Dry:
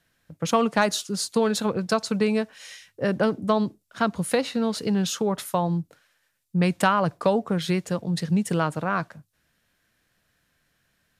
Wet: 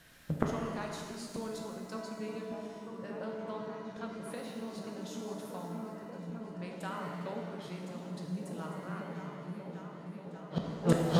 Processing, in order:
echo whose low-pass opens from repeat to repeat 584 ms, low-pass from 200 Hz, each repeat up 1 octave, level 0 dB
gate with flip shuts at −21 dBFS, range −31 dB
reverb with rising layers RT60 1.7 s, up +7 semitones, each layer −8 dB, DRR 0.5 dB
level +9 dB

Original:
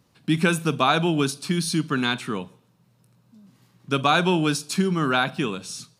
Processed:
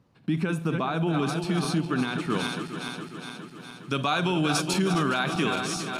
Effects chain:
feedback delay that plays each chunk backwards 206 ms, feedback 78%, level −11 dB
high-shelf EQ 5,300 Hz −7.5 dB
brickwall limiter −16.5 dBFS, peak gain reduction 10.5 dB
high-shelf EQ 2,300 Hz −8.5 dB, from 0:01.13 −3.5 dB, from 0:02.30 +6 dB

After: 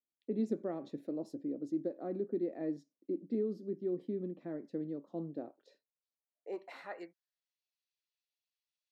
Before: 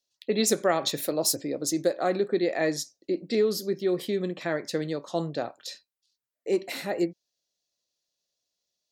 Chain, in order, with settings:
band-pass filter sweep 260 Hz → 2,400 Hz, 0:05.27–0:07.63
level −3.5 dB

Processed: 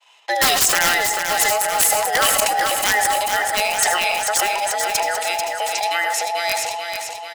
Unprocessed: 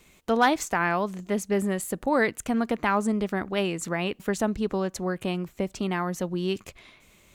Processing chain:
frequency inversion band by band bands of 1,000 Hz
Bessel high-pass filter 530 Hz, order 4
low-pass that shuts in the quiet parts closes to 3,000 Hz, open at −25 dBFS
downward expander −56 dBFS
spectral tilt +4.5 dB per octave
wrap-around overflow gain 14.5 dB
repeating echo 440 ms, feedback 57%, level −6 dB
convolution reverb RT60 0.70 s, pre-delay 76 ms, DRR 10.5 dB
level that may fall only so fast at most 26 dB per second
level +5.5 dB

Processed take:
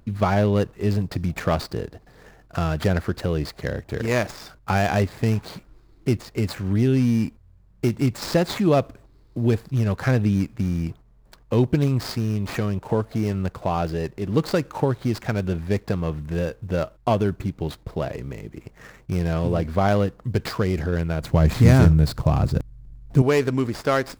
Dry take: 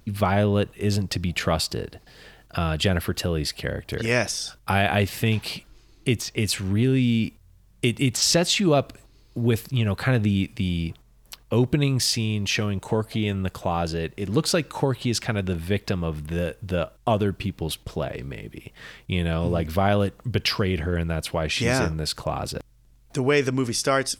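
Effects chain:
running median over 15 samples
0:21.21–0:23.22: bass and treble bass +13 dB, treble +4 dB
level +1.5 dB

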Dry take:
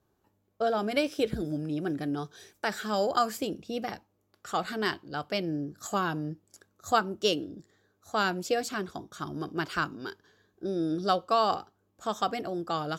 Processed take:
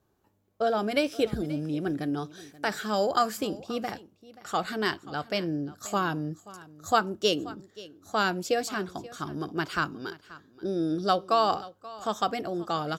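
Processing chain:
single-tap delay 531 ms −19 dB
level +1.5 dB

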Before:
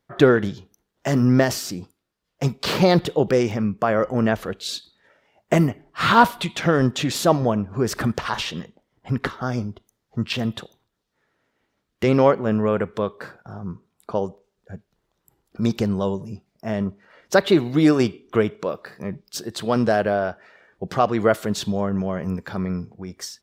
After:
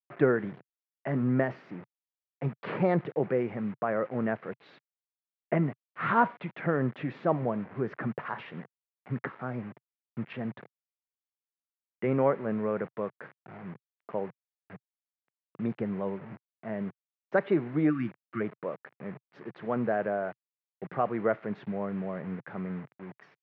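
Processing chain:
time-frequency box erased 0:17.90–0:18.41, 360–1,100 Hz
bit-depth reduction 6 bits, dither none
elliptic band-pass filter 130–2,100 Hz, stop band 60 dB
level −9 dB

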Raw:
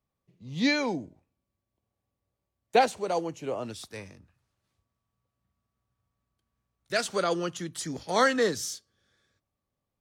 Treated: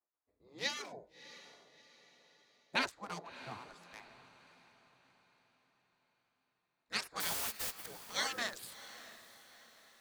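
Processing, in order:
adaptive Wiener filter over 15 samples
0:07.20–0:07.86: bit-depth reduction 6 bits, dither triangular
gate on every frequency bin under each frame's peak −15 dB weak
on a send: feedback delay with all-pass diffusion 658 ms, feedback 44%, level −15 dB
on the sum: level −2 dB

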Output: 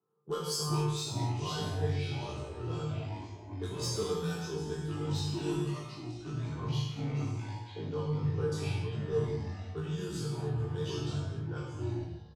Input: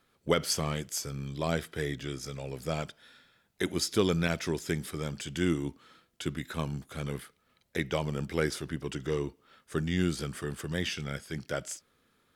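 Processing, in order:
0:06.42–0:08.52: low-pass filter 1,100 Hz 6 dB per octave
low-pass that shuts in the quiet parts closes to 780 Hz, open at −24.5 dBFS
high-pass filter 110 Hz 24 dB per octave
tuned comb filter 150 Hz, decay 0.3 s, harmonics all, mix 80%
soft clipping −30.5 dBFS, distortion −17 dB
phaser with its sweep stopped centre 410 Hz, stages 8
delay with pitch and tempo change per echo 330 ms, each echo −4 semitones, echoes 3
double-tracking delay 20 ms −4 dB
reverb whose tail is shaped and stops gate 310 ms falling, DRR −4 dB

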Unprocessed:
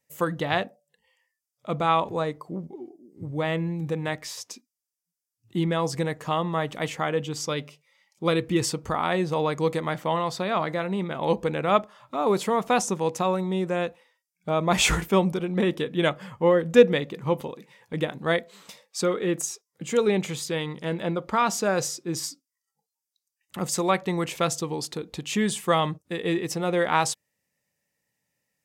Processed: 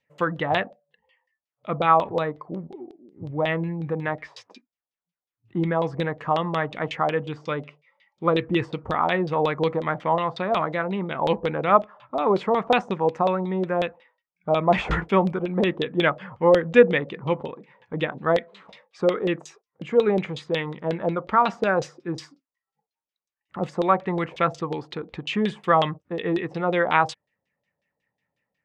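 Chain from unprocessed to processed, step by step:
auto-filter low-pass saw down 5.5 Hz 560–3,800 Hz

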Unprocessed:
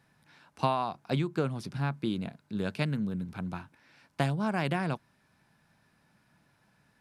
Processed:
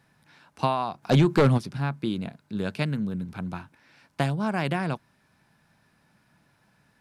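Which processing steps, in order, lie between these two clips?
0:01.02–0:01.57: sine wavefolder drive 4 dB → 9 dB, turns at −15.5 dBFS
level +3 dB

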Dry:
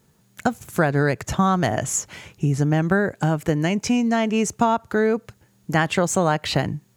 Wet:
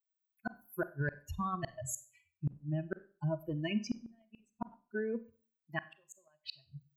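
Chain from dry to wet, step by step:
spectral dynamics exaggerated over time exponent 3
reversed playback
downward compressor 8 to 1, threshold −35 dBFS, peak gain reduction 16.5 dB
reversed playback
EQ curve with evenly spaced ripples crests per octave 1.4, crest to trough 13 dB
gate with flip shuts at −27 dBFS, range −39 dB
four-comb reverb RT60 0.4 s, combs from 31 ms, DRR 14 dB
level +3 dB

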